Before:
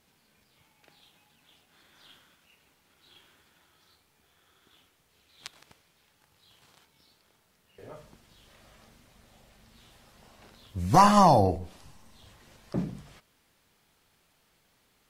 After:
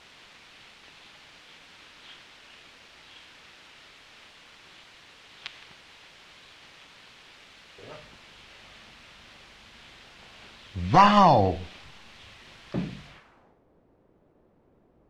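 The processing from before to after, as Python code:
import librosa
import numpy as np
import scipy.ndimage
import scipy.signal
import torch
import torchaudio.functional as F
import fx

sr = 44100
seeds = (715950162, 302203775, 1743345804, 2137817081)

y = fx.quant_dither(x, sr, seeds[0], bits=8, dither='triangular')
y = fx.filter_sweep_lowpass(y, sr, from_hz=3300.0, to_hz=460.0, start_s=13.05, end_s=13.62, q=0.98)
y = fx.dynamic_eq(y, sr, hz=2900.0, q=0.72, threshold_db=-57.0, ratio=4.0, max_db=7)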